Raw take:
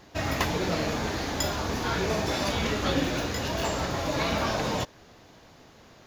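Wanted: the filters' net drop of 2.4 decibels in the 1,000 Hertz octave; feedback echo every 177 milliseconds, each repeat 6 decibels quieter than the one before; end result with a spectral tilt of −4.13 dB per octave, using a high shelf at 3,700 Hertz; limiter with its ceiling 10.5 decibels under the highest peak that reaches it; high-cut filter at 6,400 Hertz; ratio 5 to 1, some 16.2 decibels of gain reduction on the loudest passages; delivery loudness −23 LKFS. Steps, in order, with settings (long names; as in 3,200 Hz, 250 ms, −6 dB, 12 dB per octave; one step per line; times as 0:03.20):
low-pass filter 6,400 Hz
parametric band 1,000 Hz −3.5 dB
high-shelf EQ 3,700 Hz +4 dB
downward compressor 5 to 1, threshold −41 dBFS
brickwall limiter −37.5 dBFS
repeating echo 177 ms, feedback 50%, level −6 dB
level +22.5 dB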